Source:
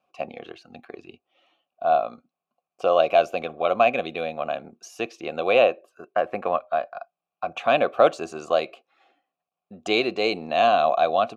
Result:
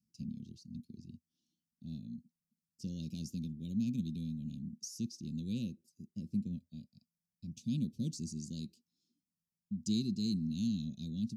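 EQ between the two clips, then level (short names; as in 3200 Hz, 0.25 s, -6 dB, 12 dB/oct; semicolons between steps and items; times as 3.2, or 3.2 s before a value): Chebyshev band-stop 220–5000 Hz, order 4; high shelf 3700 Hz -8.5 dB; +6.5 dB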